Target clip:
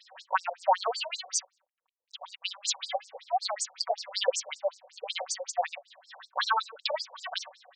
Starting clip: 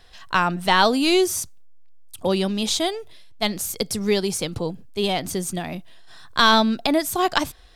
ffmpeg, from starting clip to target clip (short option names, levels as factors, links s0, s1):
-filter_complex "[0:a]asettb=1/sr,asplit=3[s0][s1][s2];[s0]atrim=end=2.354[s3];[s1]atrim=start=2.35:end=5.04,asetpts=PTS-STARTPTS,afade=t=in:d=0.004:c=qsin,afade=t=out:st=2.686:d=0.004:c=qsin,acrossover=split=840|4400[s4][s5][s6];[s5]adelay=70[s7];[s4]adelay=480[s8];[s8][s7][s6]amix=inputs=3:normalize=0,atrim=end_sample=118629[s9];[s2]atrim=start=5.036[s10];[s3][s9]acrossfade=d=0.004:c1=hsin:c2=qsin[s11];[s11][s10]acrossfade=d=0.004:c1=qsin:c2=hsin,acompressor=threshold=0.0891:ratio=2.5,equalizer=f=330:w=0.42:g=10,bandreject=f=50:t=h:w=6,bandreject=f=100:t=h:w=6,acrusher=bits=8:mode=log:mix=0:aa=0.000001,aecho=1:1:5.3:0.9,alimiter=limit=0.299:level=0:latency=1:release=90,afftfilt=real='re*between(b*sr/1024,630*pow(6200/630,0.5+0.5*sin(2*PI*5.3*pts/sr))/1.41,630*pow(6200/630,0.5+0.5*sin(2*PI*5.3*pts/sr))*1.41)':imag='im*between(b*sr/1024,630*pow(6200/630,0.5+0.5*sin(2*PI*5.3*pts/sr))/1.41,630*pow(6200/630,0.5+0.5*sin(2*PI*5.3*pts/sr))*1.41)':win_size=1024:overlap=0.75,volume=1.19"